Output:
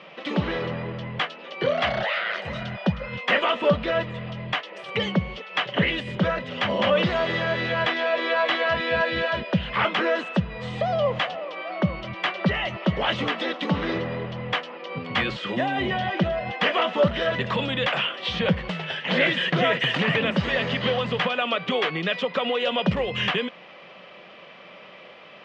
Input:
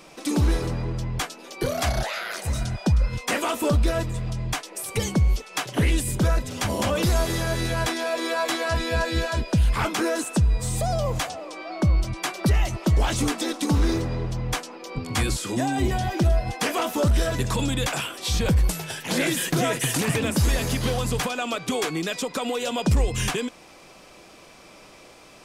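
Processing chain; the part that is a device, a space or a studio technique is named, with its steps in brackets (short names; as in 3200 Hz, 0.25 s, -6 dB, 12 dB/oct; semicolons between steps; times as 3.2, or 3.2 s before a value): kitchen radio (speaker cabinet 170–3600 Hz, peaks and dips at 180 Hz +7 dB, 300 Hz -8 dB, 560 Hz +7 dB, 1200 Hz +4 dB, 1900 Hz +8 dB, 3000 Hz +9 dB)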